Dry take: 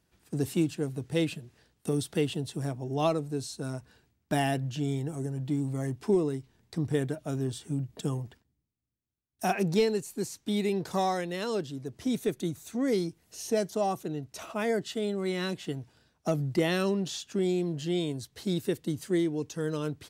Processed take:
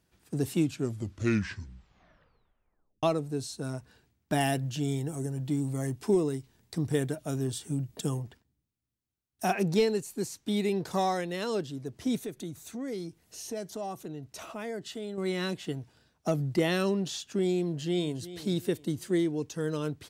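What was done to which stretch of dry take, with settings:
0.55 tape stop 2.48 s
4.4–8.19 high shelf 5600 Hz +8 dB
12.23–15.18 compressor 2:1, threshold -39 dBFS
17.61–18.23 echo throw 0.36 s, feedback 35%, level -14.5 dB

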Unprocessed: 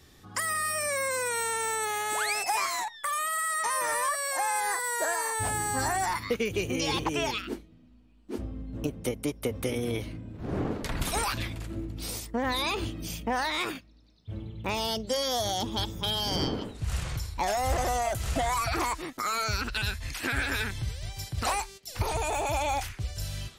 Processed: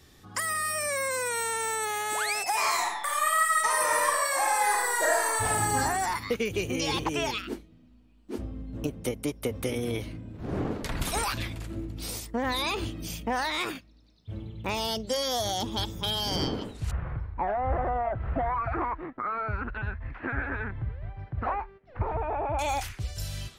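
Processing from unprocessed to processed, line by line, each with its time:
2.53–5.76 reverb throw, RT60 0.97 s, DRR -1.5 dB
16.91–22.59 LPF 1700 Hz 24 dB/oct

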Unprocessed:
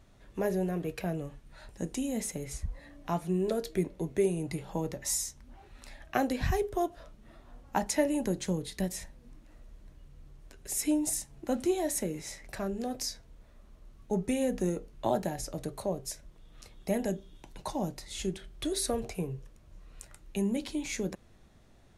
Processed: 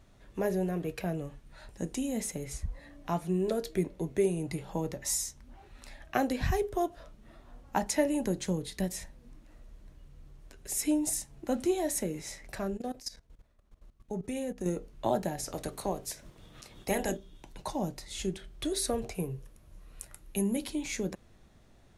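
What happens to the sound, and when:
12.77–14.66 level quantiser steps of 17 dB
15.38–17.16 spectral limiter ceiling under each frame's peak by 14 dB
19.19–20.7 bell 11000 Hz +13.5 dB 0.3 oct

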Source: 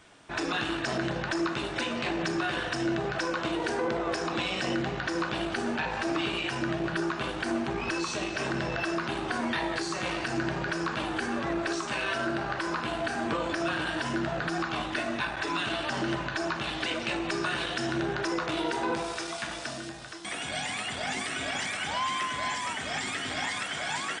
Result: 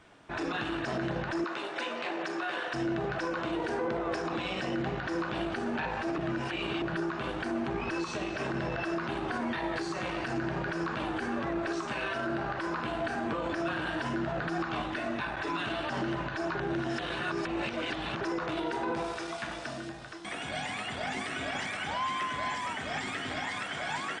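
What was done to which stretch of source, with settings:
1.44–2.74 HPF 420 Hz
6.18–6.82 reverse
16.55–18.21 reverse
whole clip: high shelf 3700 Hz -11 dB; limiter -24 dBFS

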